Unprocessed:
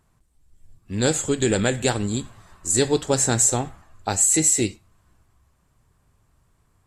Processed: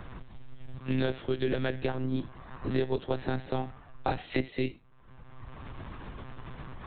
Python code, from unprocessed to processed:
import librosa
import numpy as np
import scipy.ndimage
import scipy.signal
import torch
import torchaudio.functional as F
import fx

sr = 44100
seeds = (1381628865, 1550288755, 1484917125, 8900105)

y = fx.lpc_monotone(x, sr, seeds[0], pitch_hz=130.0, order=16)
y = fx.high_shelf(y, sr, hz=2500.0, db=-12.0, at=(1.86, 4.12))
y = fx.band_squash(y, sr, depth_pct=100)
y = y * 10.0 ** (-7.5 / 20.0)